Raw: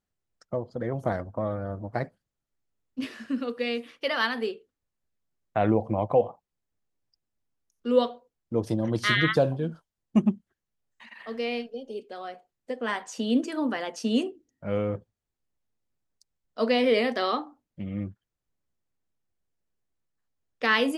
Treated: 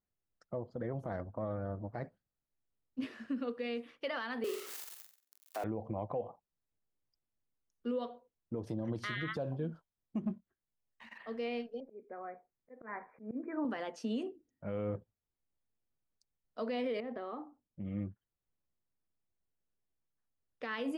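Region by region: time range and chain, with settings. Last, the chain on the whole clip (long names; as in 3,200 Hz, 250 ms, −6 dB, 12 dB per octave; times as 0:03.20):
0:04.44–0:05.64: spike at every zero crossing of −20 dBFS + Butterworth high-pass 260 Hz 48 dB per octave + flutter between parallel walls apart 7.8 metres, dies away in 0.44 s
0:10.21–0:11.18: leveller curve on the samples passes 1 + double-tracking delay 22 ms −13 dB
0:11.80–0:13.65: Chebyshev low-pass filter 2,400 Hz, order 10 + volume swells 206 ms
0:17.00–0:17.85: downward compressor 3 to 1, threshold −29 dBFS + head-to-tape spacing loss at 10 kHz 44 dB
whole clip: high-shelf EQ 3,300 Hz −10.5 dB; downward compressor, threshold −24 dBFS; brickwall limiter −22.5 dBFS; level −5.5 dB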